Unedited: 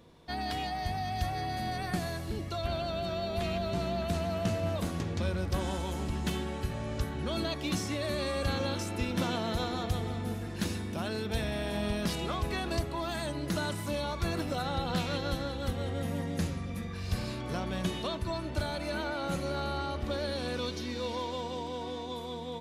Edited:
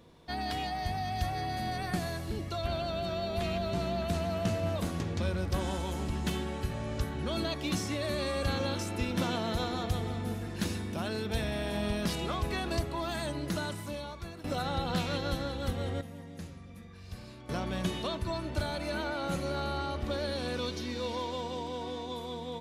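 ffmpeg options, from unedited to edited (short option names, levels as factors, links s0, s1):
-filter_complex "[0:a]asplit=4[s0][s1][s2][s3];[s0]atrim=end=14.44,asetpts=PTS-STARTPTS,afade=t=out:st=13.35:d=1.09:silence=0.158489[s4];[s1]atrim=start=14.44:end=16.012,asetpts=PTS-STARTPTS,afade=t=in:d=0.004:c=hsin:silence=0.158489[s5];[s2]atrim=start=16.008:end=17.492,asetpts=PTS-STARTPTS,volume=0.266[s6];[s3]atrim=start=17.488[s7];[s4][s5]concat=n=2:v=0:a=1[s8];[s8][s6]acrossfade=d=0.004:c1=hsin:c2=hsin[s9];[s9][s7]acrossfade=d=0.004:c1=hsin:c2=hsin"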